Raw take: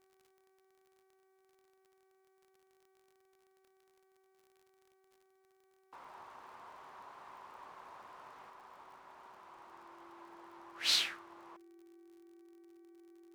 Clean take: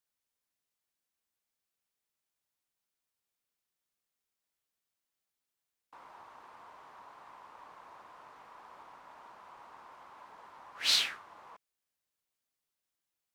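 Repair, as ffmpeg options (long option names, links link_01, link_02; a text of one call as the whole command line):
ffmpeg -i in.wav -af "adeclick=threshold=4,bandreject=frequency=380.8:width_type=h:width=4,bandreject=frequency=761.6:width_type=h:width=4,bandreject=frequency=1142.4:width_type=h:width=4,bandreject=frequency=1523.2:width_type=h:width=4,bandreject=frequency=1904:width_type=h:width=4,bandreject=frequency=2284.8:width_type=h:width=4,bandreject=frequency=340:width=30,asetnsamples=nb_out_samples=441:pad=0,asendcmd='8.5 volume volume 3dB',volume=0dB" out.wav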